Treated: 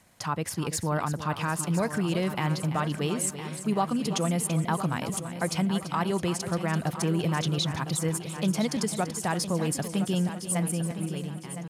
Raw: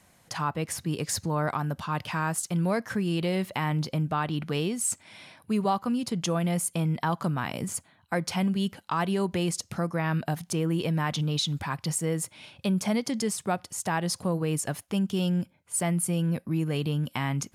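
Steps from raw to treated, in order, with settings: ending faded out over 1.87 s; tempo 1.5×; multi-head echo 0.337 s, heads first and third, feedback 48%, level -12 dB

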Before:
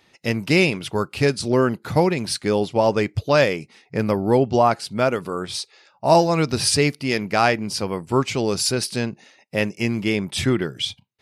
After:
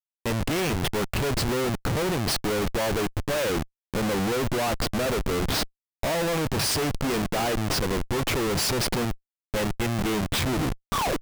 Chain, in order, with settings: tape stop at the end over 0.70 s; dynamic EQ 510 Hz, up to +5 dB, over -34 dBFS, Q 3.8; Schmitt trigger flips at -28.5 dBFS; gain -5 dB

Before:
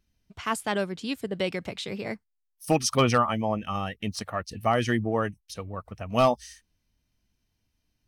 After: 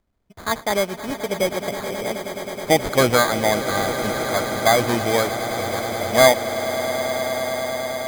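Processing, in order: bell 640 Hz +9.5 dB 1.5 oct; sample-and-hold 16×; swelling echo 0.106 s, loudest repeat 8, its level -15 dB

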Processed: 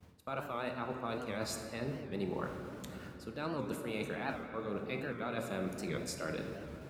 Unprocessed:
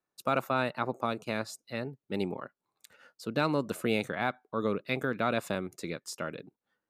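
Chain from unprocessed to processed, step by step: added noise brown -45 dBFS; HPF 73 Hz 24 dB/oct; reverse; compressor 10:1, threshold -39 dBFS, peak gain reduction 17 dB; reverse; expander -50 dBFS; on a send at -3 dB: reverb RT60 3.0 s, pre-delay 6 ms; on the sum: record warp 78 rpm, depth 160 cents; gain +3.5 dB

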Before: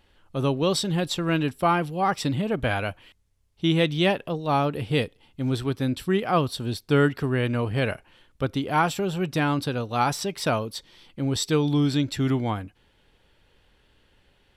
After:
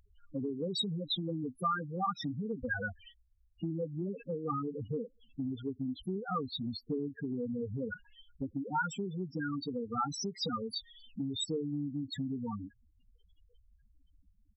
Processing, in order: bin magnitudes rounded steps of 15 dB; bell 660 Hz -10.5 dB 0.38 oct; comb 4.2 ms, depth 32%; loudest bins only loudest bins 4; compressor, threshold -35 dBFS, peak gain reduction 15.5 dB; low shelf 480 Hz -9 dB; gain +7.5 dB

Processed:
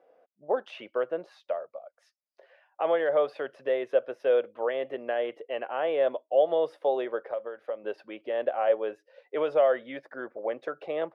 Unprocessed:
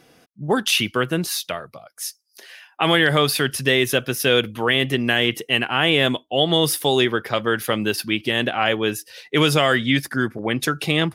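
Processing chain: 7.19–7.84 compressor 10:1, threshold -25 dBFS, peak gain reduction 10.5 dB; ladder band-pass 610 Hz, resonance 70%; gain +2.5 dB

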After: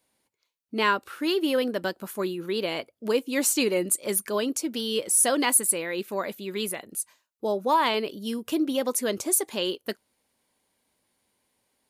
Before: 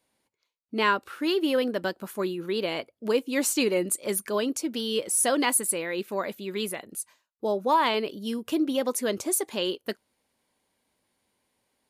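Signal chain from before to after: high shelf 5900 Hz +4.5 dB

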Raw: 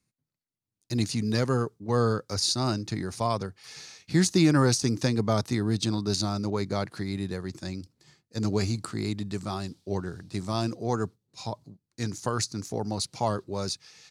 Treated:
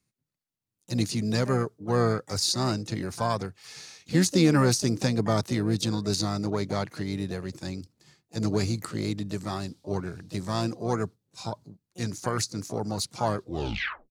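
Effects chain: tape stop at the end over 0.67 s; harmoniser +7 st -12 dB

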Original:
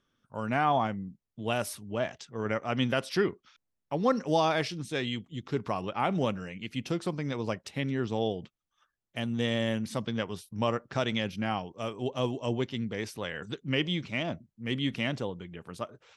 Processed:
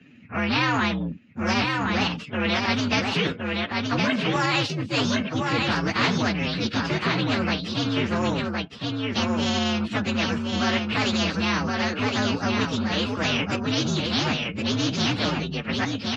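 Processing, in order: inharmonic rescaling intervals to 127%; resonant low shelf 390 Hz +10 dB, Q 1.5; in parallel at -2 dB: level quantiser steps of 19 dB; on the sum: limiter -16 dBFS, peak gain reduction 11 dB; added harmonics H 7 -41 dB, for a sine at -16 dBFS; speaker cabinet 170–4100 Hz, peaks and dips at 370 Hz -6 dB, 790 Hz -3 dB, 1400 Hz +4 dB, 2700 Hz +8 dB; on a send: echo 1.066 s -6 dB; on the sum: spectral compressor 2:1; gain +7.5 dB

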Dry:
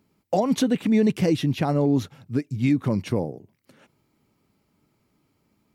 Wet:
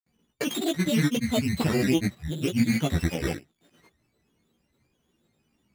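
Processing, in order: sample sorter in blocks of 16 samples; grains, pitch spread up and down by 7 st; chorus voices 4, 0.59 Hz, delay 15 ms, depth 3 ms; gain +1.5 dB

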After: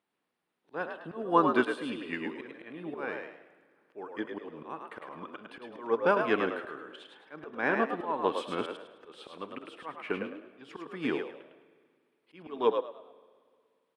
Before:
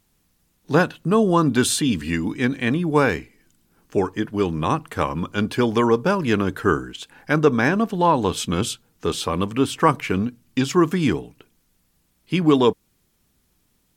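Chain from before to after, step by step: HPF 410 Hz 12 dB/oct; bell 9200 Hz +14.5 dB 0.53 oct; auto swell 0.282 s; air absorption 400 m; frequency-shifting echo 0.105 s, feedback 33%, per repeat +64 Hz, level -4.5 dB; on a send at -15 dB: reverb RT60 2.0 s, pre-delay 57 ms; on the sum: upward expander 1.5:1, over -33 dBFS

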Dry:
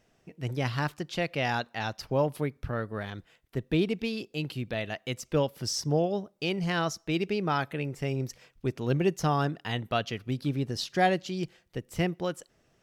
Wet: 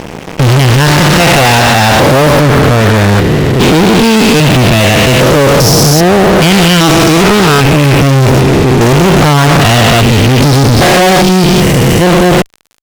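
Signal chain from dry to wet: stepped spectrum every 0.4 s; fuzz box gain 51 dB, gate -58 dBFS; gain +8.5 dB

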